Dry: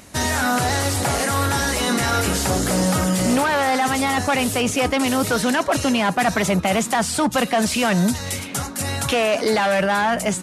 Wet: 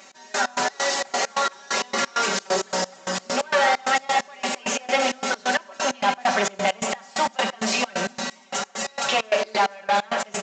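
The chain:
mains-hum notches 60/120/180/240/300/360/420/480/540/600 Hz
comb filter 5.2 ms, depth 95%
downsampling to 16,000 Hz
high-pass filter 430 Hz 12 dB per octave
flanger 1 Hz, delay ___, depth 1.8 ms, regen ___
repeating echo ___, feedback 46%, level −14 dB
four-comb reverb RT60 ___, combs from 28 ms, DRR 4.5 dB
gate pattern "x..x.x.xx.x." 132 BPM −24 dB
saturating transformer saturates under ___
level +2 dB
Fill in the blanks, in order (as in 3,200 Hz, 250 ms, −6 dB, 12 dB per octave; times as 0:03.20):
3.5 ms, +49%, 1,162 ms, 1.7 s, 1,200 Hz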